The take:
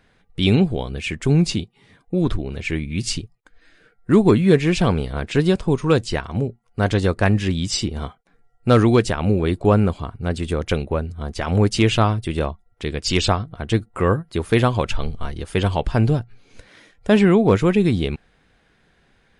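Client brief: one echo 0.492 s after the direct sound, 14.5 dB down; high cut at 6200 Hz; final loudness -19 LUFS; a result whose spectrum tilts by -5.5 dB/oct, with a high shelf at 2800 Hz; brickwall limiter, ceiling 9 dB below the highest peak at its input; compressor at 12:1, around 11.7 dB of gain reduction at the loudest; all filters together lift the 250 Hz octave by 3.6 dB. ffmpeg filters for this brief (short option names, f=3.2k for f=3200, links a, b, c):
-af "lowpass=6.2k,equalizer=f=250:t=o:g=5,highshelf=f=2.8k:g=3.5,acompressor=threshold=-18dB:ratio=12,alimiter=limit=-16dB:level=0:latency=1,aecho=1:1:492:0.188,volume=8.5dB"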